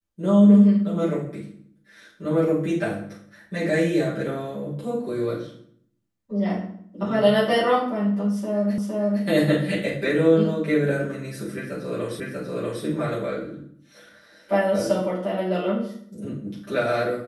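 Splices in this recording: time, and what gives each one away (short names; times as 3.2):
8.78 repeat of the last 0.46 s
12.2 repeat of the last 0.64 s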